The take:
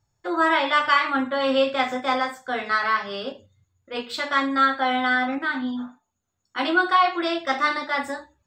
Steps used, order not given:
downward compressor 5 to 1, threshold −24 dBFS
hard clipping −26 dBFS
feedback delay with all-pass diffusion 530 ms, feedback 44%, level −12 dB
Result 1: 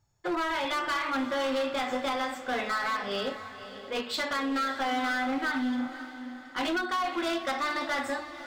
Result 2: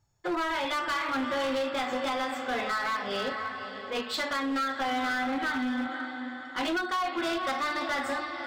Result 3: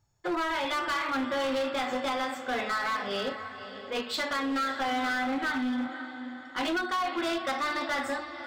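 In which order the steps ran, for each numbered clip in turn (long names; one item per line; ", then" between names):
downward compressor, then hard clipping, then feedback delay with all-pass diffusion
feedback delay with all-pass diffusion, then downward compressor, then hard clipping
downward compressor, then feedback delay with all-pass diffusion, then hard clipping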